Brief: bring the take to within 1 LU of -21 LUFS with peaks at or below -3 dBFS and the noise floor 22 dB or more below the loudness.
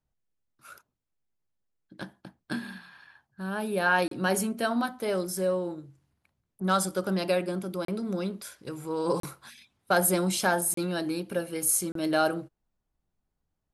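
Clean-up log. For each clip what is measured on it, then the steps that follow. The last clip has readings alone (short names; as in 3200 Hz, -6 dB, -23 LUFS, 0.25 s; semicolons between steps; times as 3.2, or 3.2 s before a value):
dropouts 5; longest dropout 33 ms; loudness -28.5 LUFS; peak -10.5 dBFS; loudness target -21.0 LUFS
-> interpolate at 4.08/7.85/9.2/10.74/11.92, 33 ms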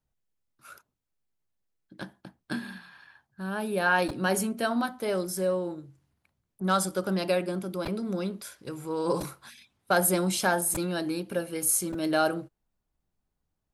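dropouts 0; loudness -28.0 LUFS; peak -10.5 dBFS; loudness target -21.0 LUFS
-> gain +7 dB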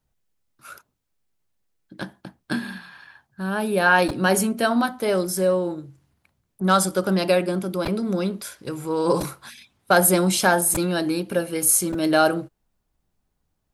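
loudness -21.5 LUFS; peak -3.5 dBFS; noise floor -75 dBFS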